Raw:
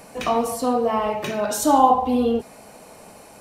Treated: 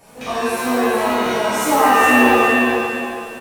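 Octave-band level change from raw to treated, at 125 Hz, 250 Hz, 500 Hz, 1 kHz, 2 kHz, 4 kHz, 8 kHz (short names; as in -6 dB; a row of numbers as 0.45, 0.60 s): +3.0, +5.0, +4.5, +4.0, +20.0, +9.0, +3.5 dB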